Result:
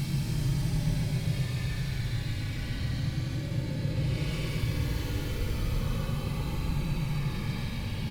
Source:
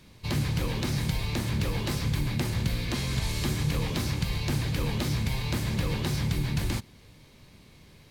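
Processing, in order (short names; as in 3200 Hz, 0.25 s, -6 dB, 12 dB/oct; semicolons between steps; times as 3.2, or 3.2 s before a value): vibrato 2.7 Hz 16 cents; three bands offset in time mids, lows, highs 40/70 ms, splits 300/930 Hz; shoebox room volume 1000 m³, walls furnished, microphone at 2.4 m; Paulstretch 22×, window 0.05 s, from 4.62; on a send: darkening echo 0.136 s, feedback 81%, low-pass 3600 Hz, level -8.5 dB; on the sum: gain -8 dB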